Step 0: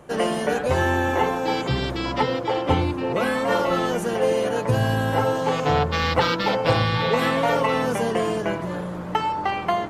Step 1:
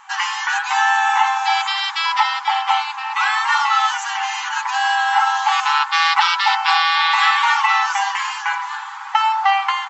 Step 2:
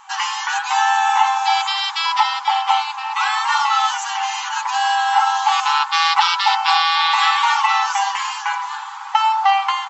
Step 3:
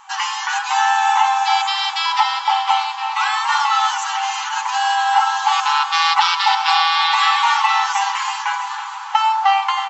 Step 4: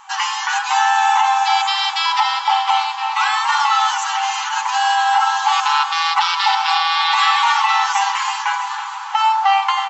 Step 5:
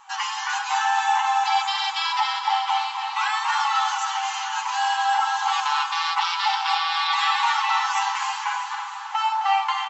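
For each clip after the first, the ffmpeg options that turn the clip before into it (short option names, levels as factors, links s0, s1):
-filter_complex "[0:a]afftfilt=real='re*between(b*sr/4096,770,7800)':imag='im*between(b*sr/4096,770,7800)':win_size=4096:overlap=0.75,aecho=1:1:6.1:0.4,asplit=2[s0][s1];[s1]alimiter=limit=0.158:level=0:latency=1:release=55,volume=1.26[s2];[s0][s2]amix=inputs=2:normalize=0,volume=1.33"
-af "equalizer=f=1800:w=1.4:g=-7,volume=1.33"
-af "aecho=1:1:321|642|963|1284|1605|1926:0.251|0.143|0.0816|0.0465|0.0265|0.0151"
-af "alimiter=level_in=2:limit=0.891:release=50:level=0:latency=1,volume=0.596"
-af "flanger=delay=7.1:depth=5.6:regen=-41:speed=0.54:shape=triangular,aecho=1:1:263:0.398,volume=0.708"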